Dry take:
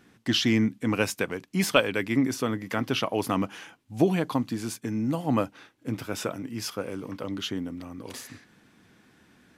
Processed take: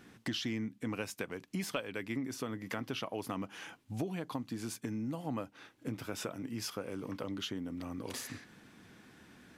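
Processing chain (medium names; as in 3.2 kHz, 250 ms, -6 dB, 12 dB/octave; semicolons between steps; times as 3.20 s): compression 4:1, threshold -38 dBFS, peak gain reduction 19 dB; trim +1 dB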